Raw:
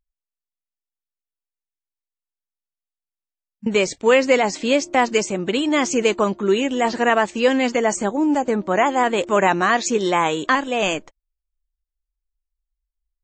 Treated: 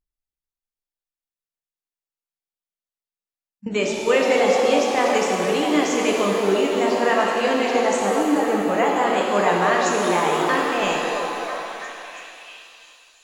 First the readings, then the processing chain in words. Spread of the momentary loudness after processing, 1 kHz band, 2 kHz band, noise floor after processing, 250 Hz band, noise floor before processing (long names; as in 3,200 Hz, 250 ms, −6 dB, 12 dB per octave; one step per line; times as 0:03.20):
12 LU, 0.0 dB, −1.5 dB, below −85 dBFS, −1.5 dB, below −85 dBFS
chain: echo through a band-pass that steps 330 ms, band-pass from 440 Hz, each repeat 0.7 octaves, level −2 dB
reverb with rising layers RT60 2.4 s, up +7 semitones, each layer −8 dB, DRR −1 dB
level −6 dB